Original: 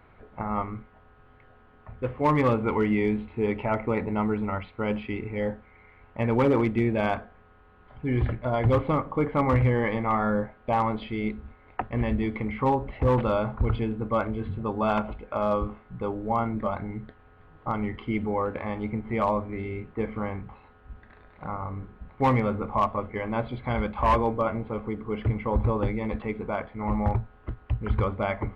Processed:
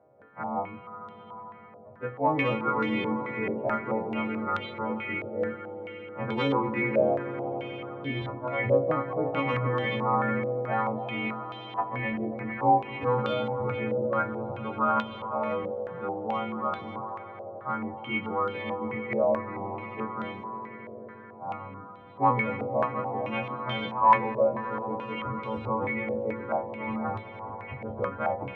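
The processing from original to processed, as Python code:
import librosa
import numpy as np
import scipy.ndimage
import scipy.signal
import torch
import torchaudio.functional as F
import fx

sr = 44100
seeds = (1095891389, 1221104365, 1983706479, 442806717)

y = fx.freq_snap(x, sr, grid_st=2)
y = scipy.signal.sosfilt(scipy.signal.butter(4, 110.0, 'highpass', fs=sr, output='sos'), y)
y = fx.doubler(y, sr, ms=22.0, db=-5.5)
y = fx.echo_swell(y, sr, ms=89, loudest=5, wet_db=-14.0)
y = fx.filter_held_lowpass(y, sr, hz=4.6, low_hz=610.0, high_hz=3500.0)
y = y * 10.0 ** (-6.5 / 20.0)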